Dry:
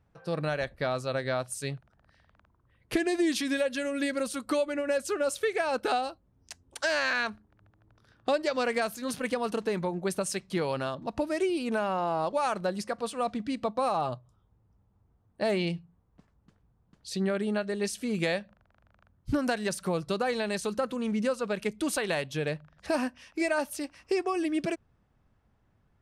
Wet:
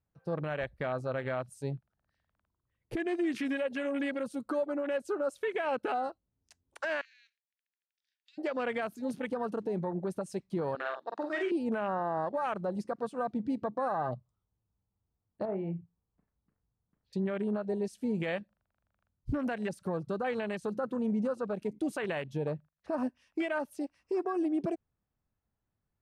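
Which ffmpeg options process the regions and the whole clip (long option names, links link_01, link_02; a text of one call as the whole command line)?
ffmpeg -i in.wav -filter_complex "[0:a]asettb=1/sr,asplit=3[link_01][link_02][link_03];[link_01]atrim=end=7.014[link_04];[link_02]atrim=start=7.01:end=8.38,asetpts=PTS-STARTPTS,afade=type=in:duration=0.004:curve=qsin,afade=type=out:start_time=1.366:duration=0.004:curve=qsin,asuperpass=centerf=3800:order=12:qfactor=0.7,acompressor=threshold=-42dB:ratio=5:attack=3.2:release=140:knee=1:detection=peak[link_05];[link_03]atrim=start=8.376[link_06];[link_04][link_05]acrossfade=duration=0.004:curve1=hsin:curve2=qsin[link_07];[link_07][link_06]acrossfade=duration=0.004:curve1=qsin:curve2=hsin,asettb=1/sr,asplit=3[link_08][link_09][link_10];[link_08]atrim=end=10.754[link_11];[link_09]atrim=start=10.75:end=11.52,asetpts=PTS-STARTPTS,afade=type=in:duration=0.004:curve=qsin,afade=type=out:start_time=0.766:duration=0.004:curve=qsin,highpass=460,equalizer=frequency=580:width_type=q:width=4:gain=-6,equalizer=frequency=1000:width_type=q:width=4:gain=-5,equalizer=frequency=1700:width_type=q:width=4:gain=8,equalizer=frequency=2600:width_type=q:width=4:gain=-4,equalizer=frequency=3800:width_type=q:width=4:gain=7,lowpass=frequency=8000:width=0.5412,lowpass=frequency=8000:width=1.3066,asplit=2[link_12][link_13];[link_13]adelay=47,volume=-4dB[link_14];[link_12][link_14]amix=inputs=2:normalize=0,atrim=end_sample=33957[link_15];[link_10]atrim=start=11.516[link_16];[link_11][link_15]acrossfade=duration=0.004:curve1=hsin:curve2=qsin[link_17];[link_17][link_16]acrossfade=duration=0.004:curve1=qsin:curve2=hsin,asettb=1/sr,asplit=3[link_18][link_19][link_20];[link_18]atrim=end=15.454[link_21];[link_19]atrim=start=15.45:end=17.13,asetpts=PTS-STARTPTS,afade=type=in:duration=0.004:curve=qsin,afade=type=out:start_time=1.676:duration=0.004:curve=qsin,lowpass=frequency=2300:width=0.5412,lowpass=frequency=2300:width=1.3066,acompressor=threshold=-42dB:ratio=1.5:attack=3.2:release=140:knee=1:detection=peak,asplit=2[link_22][link_23];[link_23]adelay=36,volume=-8dB[link_24];[link_22][link_24]amix=inputs=2:normalize=0,atrim=end_sample=74088[link_25];[link_20]atrim=start=17.126[link_26];[link_21][link_25]acrossfade=duration=0.004:curve1=hsin:curve2=qsin[link_27];[link_27][link_26]acrossfade=duration=0.004:curve1=qsin:curve2=hsin,asettb=1/sr,asplit=3[link_28][link_29][link_30];[link_28]atrim=end=22.524[link_31];[link_29]atrim=start=22.52:end=22.98,asetpts=PTS-STARTPTS,afade=type=in:duration=0.004:curve=qsin,afade=type=out:start_time=0.456:duration=0.004:curve=qsin,highshelf=frequency=5700:gain=-8.5,agate=range=-16dB:threshold=-56dB:ratio=16:release=100:detection=peak[link_32];[link_30]atrim=start=22.976[link_33];[link_31][link_32]acrossfade=duration=0.004:curve1=hsin:curve2=qsin[link_34];[link_34][link_33]acrossfade=duration=0.004:curve1=qsin:curve2=hsin,afwtdn=0.0178,alimiter=limit=-24dB:level=0:latency=1:release=100" out.wav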